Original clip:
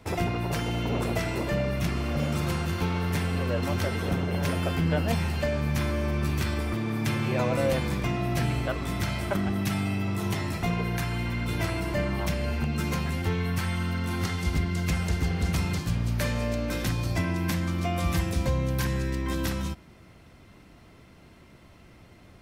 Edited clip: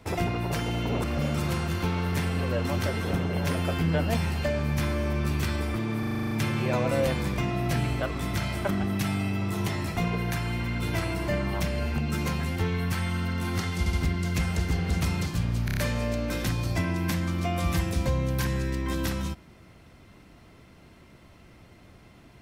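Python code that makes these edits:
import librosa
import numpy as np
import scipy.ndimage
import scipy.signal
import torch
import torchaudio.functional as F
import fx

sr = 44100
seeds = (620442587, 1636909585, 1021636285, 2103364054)

y = fx.edit(x, sr, fx.cut(start_s=1.04, length_s=0.98),
    fx.stutter(start_s=6.97, slice_s=0.04, count=9),
    fx.stutter(start_s=14.45, slice_s=0.07, count=3),
    fx.stutter(start_s=16.17, slice_s=0.03, count=5), tone=tone)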